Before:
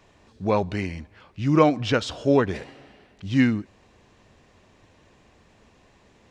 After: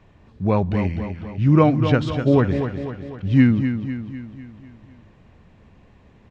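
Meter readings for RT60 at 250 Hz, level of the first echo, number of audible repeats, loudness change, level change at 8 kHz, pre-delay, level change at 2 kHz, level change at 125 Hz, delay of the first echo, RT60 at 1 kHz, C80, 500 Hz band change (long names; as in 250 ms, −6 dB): no reverb audible, −8.5 dB, 5, +3.0 dB, can't be measured, no reverb audible, 0.0 dB, +9.0 dB, 250 ms, no reverb audible, no reverb audible, +1.0 dB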